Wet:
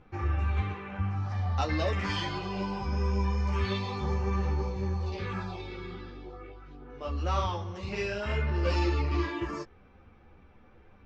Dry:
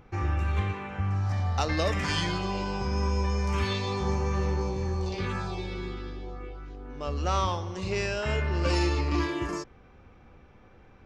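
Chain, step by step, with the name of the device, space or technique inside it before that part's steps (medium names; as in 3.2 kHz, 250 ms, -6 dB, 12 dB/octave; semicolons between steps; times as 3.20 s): string-machine ensemble chorus (three-phase chorus; low-pass 4.7 kHz 12 dB/octave)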